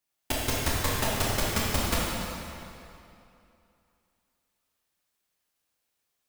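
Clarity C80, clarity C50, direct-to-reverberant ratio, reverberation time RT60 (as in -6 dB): -1.0 dB, -2.5 dB, -6.0 dB, 2.8 s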